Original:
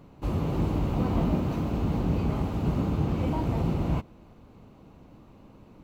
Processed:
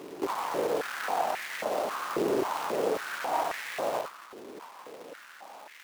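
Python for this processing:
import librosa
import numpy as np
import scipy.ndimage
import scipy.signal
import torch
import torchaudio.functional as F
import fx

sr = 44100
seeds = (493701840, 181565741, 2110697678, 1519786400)

p1 = fx.high_shelf(x, sr, hz=2100.0, db=-6.0)
p2 = fx.rider(p1, sr, range_db=10, speed_s=0.5)
p3 = p1 + F.gain(torch.from_numpy(p2), -2.0).numpy()
p4 = fx.tube_stage(p3, sr, drive_db=27.0, bias=0.2)
p5 = p4 + fx.echo_feedback(p4, sr, ms=71, feedback_pct=35, wet_db=-5.5, dry=0)
p6 = fx.quant_companded(p5, sr, bits=4)
y = fx.filter_held_highpass(p6, sr, hz=3.7, low_hz=380.0, high_hz=1900.0)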